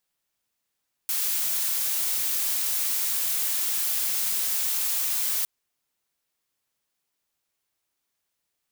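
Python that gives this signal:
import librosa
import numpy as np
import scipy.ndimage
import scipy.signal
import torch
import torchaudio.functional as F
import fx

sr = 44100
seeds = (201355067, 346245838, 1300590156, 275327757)

y = fx.noise_colour(sr, seeds[0], length_s=4.36, colour='blue', level_db=-26.0)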